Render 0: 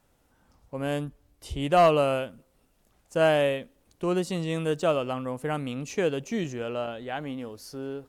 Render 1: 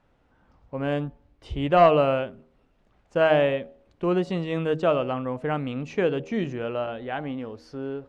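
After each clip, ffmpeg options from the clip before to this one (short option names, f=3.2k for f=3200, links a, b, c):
-af "lowpass=2.8k,bandreject=f=79.31:t=h:w=4,bandreject=f=158.62:t=h:w=4,bandreject=f=237.93:t=h:w=4,bandreject=f=317.24:t=h:w=4,bandreject=f=396.55:t=h:w=4,bandreject=f=475.86:t=h:w=4,bandreject=f=555.17:t=h:w=4,bandreject=f=634.48:t=h:w=4,bandreject=f=713.79:t=h:w=4,bandreject=f=793.1:t=h:w=4,bandreject=f=872.41:t=h:w=4,volume=3dB"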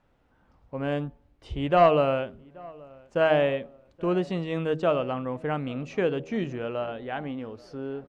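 -filter_complex "[0:a]asplit=2[a][b];[b]adelay=829,lowpass=f=1.6k:p=1,volume=-23.5dB,asplit=2[c][d];[d]adelay=829,lowpass=f=1.6k:p=1,volume=0.42,asplit=2[e][f];[f]adelay=829,lowpass=f=1.6k:p=1,volume=0.42[g];[a][c][e][g]amix=inputs=4:normalize=0,volume=-2dB"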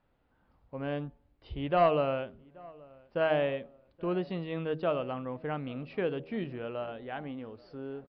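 -af "aresample=11025,aresample=44100,volume=-6dB"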